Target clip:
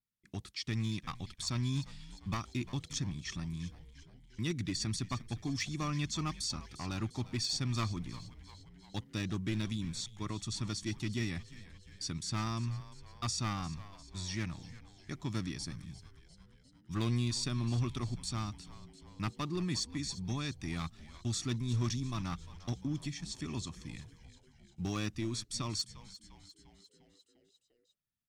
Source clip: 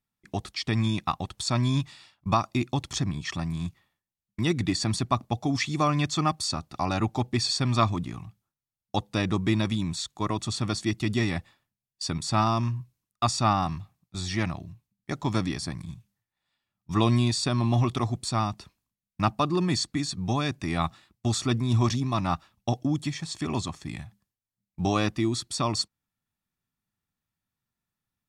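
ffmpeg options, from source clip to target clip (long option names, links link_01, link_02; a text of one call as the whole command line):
ffmpeg -i in.wav -filter_complex "[0:a]aeval=exprs='clip(val(0),-1,0.0944)':channel_layout=same,equalizer=frequency=710:width_type=o:width=1.3:gain=-12,asplit=2[link_01][link_02];[link_02]asplit=6[link_03][link_04][link_05][link_06][link_07][link_08];[link_03]adelay=350,afreqshift=-100,volume=-16dB[link_09];[link_04]adelay=700,afreqshift=-200,volume=-20.4dB[link_10];[link_05]adelay=1050,afreqshift=-300,volume=-24.9dB[link_11];[link_06]adelay=1400,afreqshift=-400,volume=-29.3dB[link_12];[link_07]adelay=1750,afreqshift=-500,volume=-33.7dB[link_13];[link_08]adelay=2100,afreqshift=-600,volume=-38.2dB[link_14];[link_09][link_10][link_11][link_12][link_13][link_14]amix=inputs=6:normalize=0[link_15];[link_01][link_15]amix=inputs=2:normalize=0,adynamicequalizer=threshold=0.00355:dfrequency=5900:dqfactor=4.2:tfrequency=5900:tqfactor=4.2:attack=5:release=100:ratio=0.375:range=2.5:mode=boostabove:tftype=bell,volume=-8dB" out.wav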